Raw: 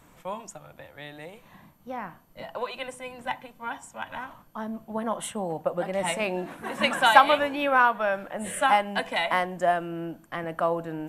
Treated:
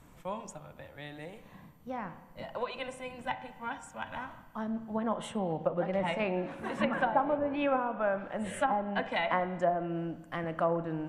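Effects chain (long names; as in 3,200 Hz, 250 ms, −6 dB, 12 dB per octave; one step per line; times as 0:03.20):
low-shelf EQ 260 Hz +7 dB
treble cut that deepens with the level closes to 560 Hz, closed at −16.5 dBFS
spring reverb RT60 1.3 s, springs 31/53 ms, chirp 65 ms, DRR 12 dB
level −4.5 dB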